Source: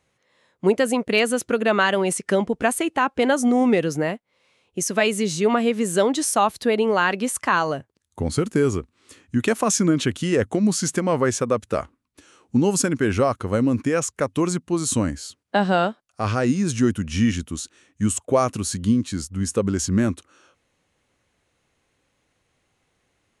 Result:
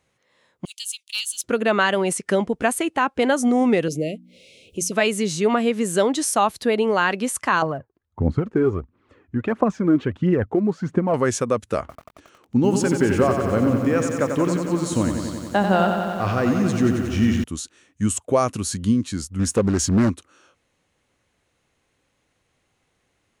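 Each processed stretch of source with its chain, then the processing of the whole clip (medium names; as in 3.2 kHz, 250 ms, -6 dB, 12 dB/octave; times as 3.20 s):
0.65–1.44 s: steep high-pass 3 kHz 48 dB/octave + waveshaping leveller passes 1
3.88–4.92 s: inverse Chebyshev band-stop 850–1700 Hz + hum notches 60/120/180/240/300 Hz + upward compressor, threshold -35 dBFS
7.62–11.14 s: low-pass 1.3 kHz + phaser 1.5 Hz, delay 3.1 ms, feedback 52%
11.80–17.44 s: low-pass 3 kHz 6 dB/octave + bit-crushed delay 91 ms, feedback 80%, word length 8-bit, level -6.5 dB
19.39–20.10 s: waveshaping leveller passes 1 + loudspeaker Doppler distortion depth 0.34 ms
whole clip: none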